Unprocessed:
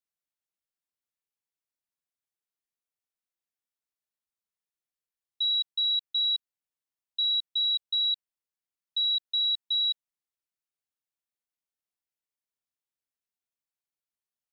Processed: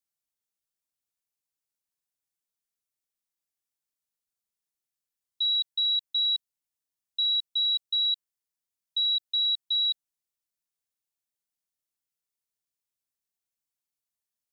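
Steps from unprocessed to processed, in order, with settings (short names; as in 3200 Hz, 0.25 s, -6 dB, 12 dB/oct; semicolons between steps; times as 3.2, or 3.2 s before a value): tone controls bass +4 dB, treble +7 dB; gain -2.5 dB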